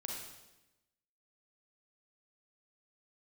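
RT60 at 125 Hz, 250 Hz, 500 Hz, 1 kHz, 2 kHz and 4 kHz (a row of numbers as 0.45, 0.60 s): 1.1, 1.2, 1.0, 0.95, 0.95, 0.95 s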